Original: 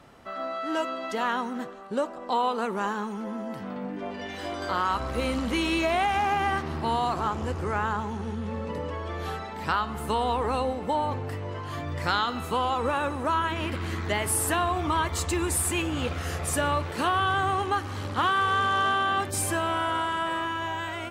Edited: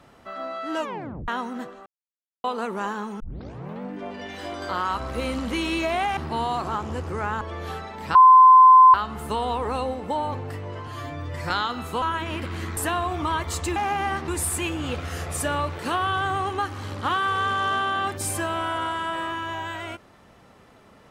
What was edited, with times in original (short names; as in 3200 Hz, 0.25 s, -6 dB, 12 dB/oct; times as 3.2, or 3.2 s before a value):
0.8 tape stop 0.48 s
1.86–2.44 mute
3.2 tape start 0.61 s
6.17–6.69 move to 15.41
7.93–8.99 cut
9.73 add tone 1030 Hz -7.5 dBFS 0.79 s
11.66–12.08 stretch 1.5×
12.6–13.32 cut
14.07–14.42 cut